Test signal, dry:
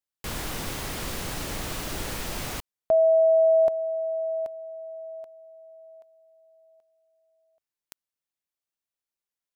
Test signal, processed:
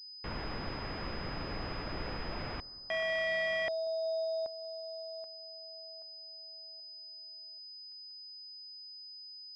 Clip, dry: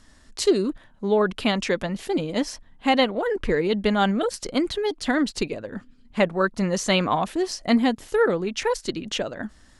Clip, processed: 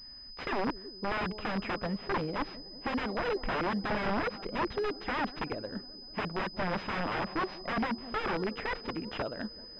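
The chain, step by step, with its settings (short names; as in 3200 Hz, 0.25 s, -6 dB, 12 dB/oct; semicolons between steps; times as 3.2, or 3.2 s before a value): analogue delay 0.187 s, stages 2048, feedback 71%, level -22 dB; wrapped overs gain 19 dB; pulse-width modulation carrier 5000 Hz; gain -5.5 dB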